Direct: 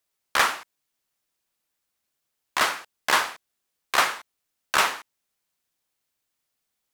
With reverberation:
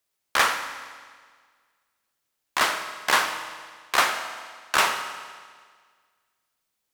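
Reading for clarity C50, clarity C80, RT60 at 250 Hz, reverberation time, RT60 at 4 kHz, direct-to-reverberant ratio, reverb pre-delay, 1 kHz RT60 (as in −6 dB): 8.0 dB, 9.5 dB, 1.7 s, 1.7 s, 1.6 s, 7.0 dB, 18 ms, 1.7 s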